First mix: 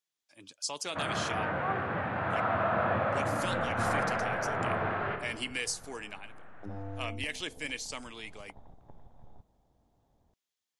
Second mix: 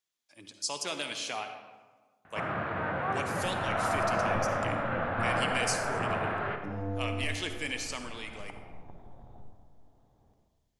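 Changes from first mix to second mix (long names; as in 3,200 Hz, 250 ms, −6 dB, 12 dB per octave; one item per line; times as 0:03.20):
speech: send on
first sound: entry +1.40 s
second sound: send on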